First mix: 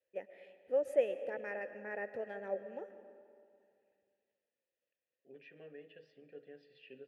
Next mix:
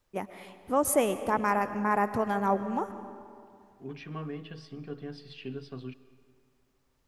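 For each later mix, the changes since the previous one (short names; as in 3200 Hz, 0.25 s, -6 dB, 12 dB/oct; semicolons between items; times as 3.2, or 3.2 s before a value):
second voice: entry -1.45 s; master: remove vowel filter e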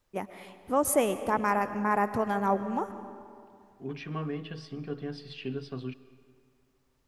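second voice +3.5 dB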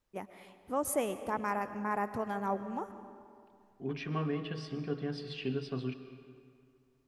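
first voice -7.0 dB; second voice: send +7.0 dB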